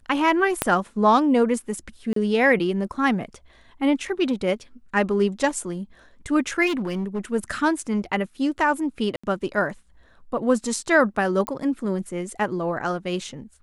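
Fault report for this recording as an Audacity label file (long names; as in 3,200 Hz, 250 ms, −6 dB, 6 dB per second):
0.620000	0.620000	click −4 dBFS
2.130000	2.160000	drop-out 33 ms
6.660000	7.190000	clipping −22 dBFS
9.160000	9.230000	drop-out 75 ms
11.470000	11.470000	click −11 dBFS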